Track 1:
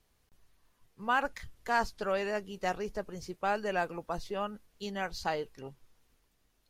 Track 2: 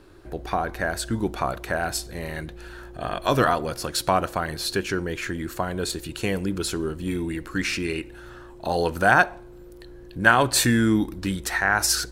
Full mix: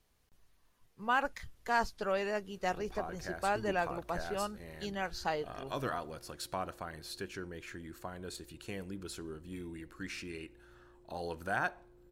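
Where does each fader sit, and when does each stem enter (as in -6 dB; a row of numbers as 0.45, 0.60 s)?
-1.5, -16.5 dB; 0.00, 2.45 s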